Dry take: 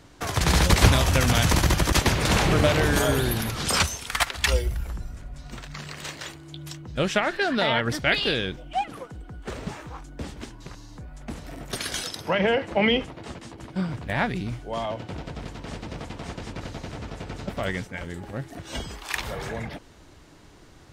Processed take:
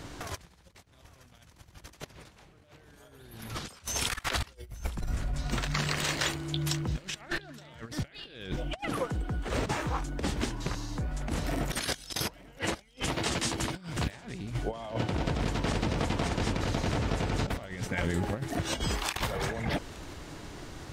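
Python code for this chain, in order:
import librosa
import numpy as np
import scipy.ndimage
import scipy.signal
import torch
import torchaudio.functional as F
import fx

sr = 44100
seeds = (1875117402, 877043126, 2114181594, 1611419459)

y = fx.high_shelf(x, sr, hz=2100.0, db=11.0, at=(11.95, 14.14), fade=0.02)
y = fx.over_compress(y, sr, threshold_db=-35.0, ratio=-0.5)
y = fx.echo_feedback(y, sr, ms=870, feedback_pct=33, wet_db=-22.5)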